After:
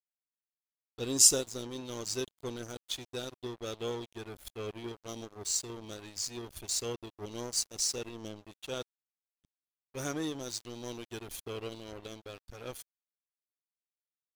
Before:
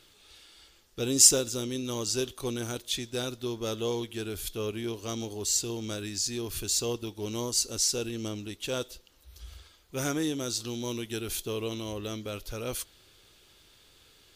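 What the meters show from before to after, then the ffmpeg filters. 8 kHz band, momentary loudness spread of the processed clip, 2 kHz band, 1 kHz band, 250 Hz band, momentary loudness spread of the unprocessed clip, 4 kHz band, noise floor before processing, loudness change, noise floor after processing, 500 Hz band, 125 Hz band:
-4.0 dB, 14 LU, -6.0 dB, -4.5 dB, -7.5 dB, 10 LU, -5.0 dB, -60 dBFS, -4.0 dB, under -85 dBFS, -6.0 dB, -8.0 dB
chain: -af "afftdn=nr=12:nf=-41,aeval=exprs='sgn(val(0))*max(abs(val(0))-0.0126,0)':c=same,volume=0.75"

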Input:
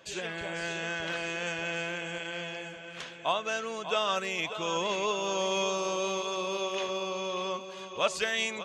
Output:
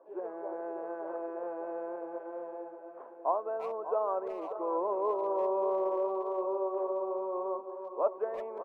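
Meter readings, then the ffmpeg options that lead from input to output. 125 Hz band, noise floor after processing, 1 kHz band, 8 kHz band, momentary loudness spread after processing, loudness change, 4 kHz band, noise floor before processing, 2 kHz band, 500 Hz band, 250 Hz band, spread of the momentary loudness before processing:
under -25 dB, -48 dBFS, -1.0 dB, under -40 dB, 10 LU, -2.5 dB, under -35 dB, -44 dBFS, under -20 dB, +1.5 dB, -1.5 dB, 7 LU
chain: -filter_complex "[0:a]asuperpass=centerf=570:order=8:qfactor=0.77,asplit=2[s0][s1];[s1]adelay=340,highpass=300,lowpass=3400,asoftclip=type=hard:threshold=0.0447,volume=0.251[s2];[s0][s2]amix=inputs=2:normalize=0,volume=1.12"

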